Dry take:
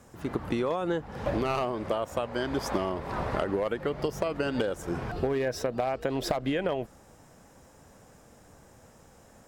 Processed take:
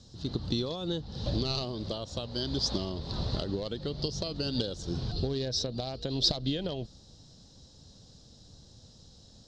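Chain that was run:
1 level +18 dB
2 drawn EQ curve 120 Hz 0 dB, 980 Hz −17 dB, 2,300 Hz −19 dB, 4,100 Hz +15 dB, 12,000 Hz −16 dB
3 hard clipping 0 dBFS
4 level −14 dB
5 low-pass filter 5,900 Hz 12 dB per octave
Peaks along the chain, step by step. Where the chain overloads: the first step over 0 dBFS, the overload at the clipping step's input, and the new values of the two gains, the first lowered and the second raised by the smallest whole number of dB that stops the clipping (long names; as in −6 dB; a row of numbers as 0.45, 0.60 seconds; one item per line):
+4.0, +3.0, 0.0, −14.0, −14.0 dBFS
step 1, 3.0 dB
step 1 +15 dB, step 4 −11 dB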